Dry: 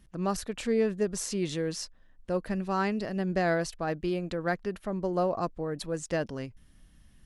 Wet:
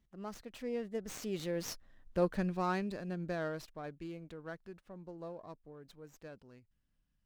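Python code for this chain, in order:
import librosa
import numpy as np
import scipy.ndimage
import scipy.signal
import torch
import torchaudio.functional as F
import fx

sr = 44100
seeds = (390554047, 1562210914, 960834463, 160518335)

y = fx.doppler_pass(x, sr, speed_mps=23, closest_m=8.6, pass_at_s=2.09)
y = fx.running_max(y, sr, window=3)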